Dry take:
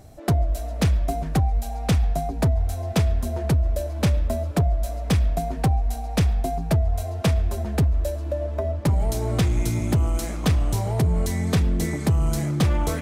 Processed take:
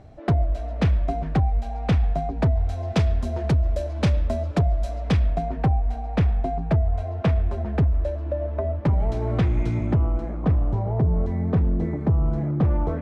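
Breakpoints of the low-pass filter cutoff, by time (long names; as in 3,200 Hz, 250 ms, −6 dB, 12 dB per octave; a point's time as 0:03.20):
0:02.37 2,900 Hz
0:03.01 4,900 Hz
0:04.87 4,900 Hz
0:05.64 2,200 Hz
0:09.76 2,200 Hz
0:10.24 1,000 Hz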